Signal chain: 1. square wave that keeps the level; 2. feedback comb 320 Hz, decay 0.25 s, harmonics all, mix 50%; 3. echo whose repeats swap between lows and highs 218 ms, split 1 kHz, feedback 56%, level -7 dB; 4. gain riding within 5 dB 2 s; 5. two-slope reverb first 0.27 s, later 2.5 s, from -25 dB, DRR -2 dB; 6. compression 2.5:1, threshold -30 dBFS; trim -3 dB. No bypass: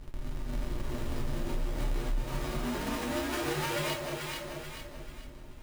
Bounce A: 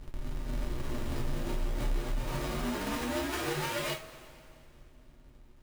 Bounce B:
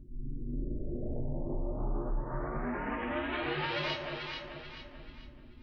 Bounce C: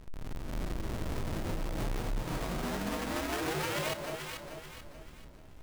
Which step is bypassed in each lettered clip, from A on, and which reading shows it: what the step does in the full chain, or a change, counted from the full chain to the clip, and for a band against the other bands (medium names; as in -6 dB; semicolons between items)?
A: 3, momentary loudness spread change -3 LU; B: 1, distortion -5 dB; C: 5, momentary loudness spread change +4 LU